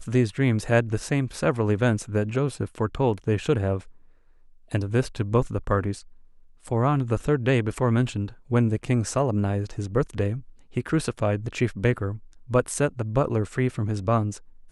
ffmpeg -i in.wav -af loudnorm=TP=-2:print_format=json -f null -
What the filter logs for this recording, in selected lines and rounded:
"input_i" : "-25.4",
"input_tp" : "-5.8",
"input_lra" : "2.4",
"input_thresh" : "-35.8",